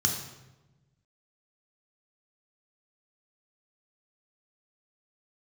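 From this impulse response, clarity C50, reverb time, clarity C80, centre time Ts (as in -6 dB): 5.0 dB, 1.1 s, 7.5 dB, 32 ms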